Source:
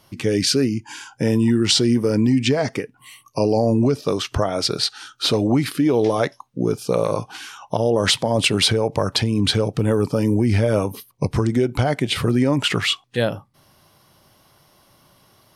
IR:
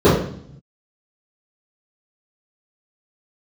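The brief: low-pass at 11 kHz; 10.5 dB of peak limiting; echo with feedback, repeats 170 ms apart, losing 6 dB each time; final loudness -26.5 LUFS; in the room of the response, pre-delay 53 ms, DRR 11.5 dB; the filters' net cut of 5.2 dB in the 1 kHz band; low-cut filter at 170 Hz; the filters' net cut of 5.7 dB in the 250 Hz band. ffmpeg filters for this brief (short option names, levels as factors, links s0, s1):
-filter_complex "[0:a]highpass=170,lowpass=11000,equalizer=f=250:t=o:g=-5.5,equalizer=f=1000:t=o:g=-7,alimiter=limit=0.178:level=0:latency=1,aecho=1:1:170|340|510|680|850|1020:0.501|0.251|0.125|0.0626|0.0313|0.0157,asplit=2[s0][s1];[1:a]atrim=start_sample=2205,adelay=53[s2];[s1][s2]afir=irnorm=-1:irlink=0,volume=0.01[s3];[s0][s3]amix=inputs=2:normalize=0,volume=0.708"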